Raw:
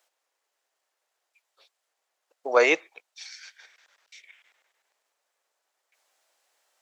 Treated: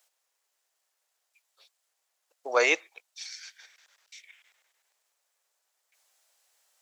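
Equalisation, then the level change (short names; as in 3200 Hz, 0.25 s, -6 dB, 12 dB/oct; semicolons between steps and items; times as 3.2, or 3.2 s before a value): HPF 360 Hz 6 dB/oct; high shelf 4100 Hz +9.5 dB; -3.5 dB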